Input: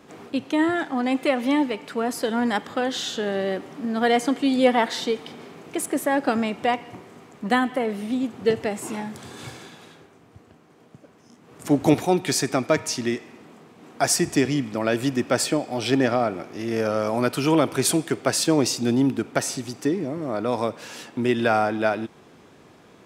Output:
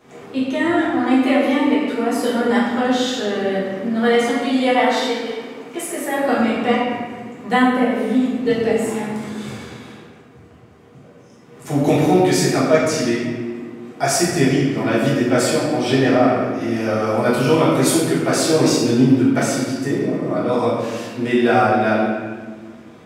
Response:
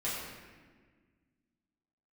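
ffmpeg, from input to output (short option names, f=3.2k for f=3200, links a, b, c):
-filter_complex "[0:a]asettb=1/sr,asplit=3[a][b][c];[a]atrim=end=4.034[d];[b]atrim=start=4.03:end=6.17,asetpts=PTS-STARTPTS,afade=t=in:d=0.004:c=qsin,afade=t=out:st=2.136:d=0.004:c=qsin,lowshelf=f=280:g=-9.5[e];[c]atrim=start=6.166[f];[d][e]acrossfade=d=0.004:c1=hsin:c2=qsin[g];[g][f]acrossfade=d=0.004:c1=qsin:c2=hsin[h];[1:a]atrim=start_sample=2205[i];[h][i]afir=irnorm=-1:irlink=0"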